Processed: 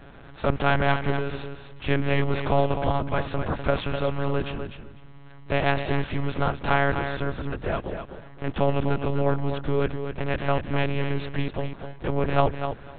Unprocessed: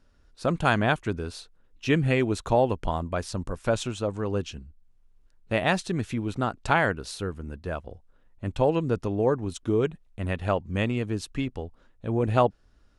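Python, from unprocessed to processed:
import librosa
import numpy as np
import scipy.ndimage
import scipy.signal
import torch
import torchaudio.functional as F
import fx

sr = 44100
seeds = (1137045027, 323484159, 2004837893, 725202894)

y = fx.bin_compress(x, sr, power=0.6)
y = fx.lpc_monotone(y, sr, seeds[0], pitch_hz=140.0, order=8)
y = fx.echo_feedback(y, sr, ms=251, feedback_pct=15, wet_db=-8.0)
y = y * librosa.db_to_amplitude(-2.0)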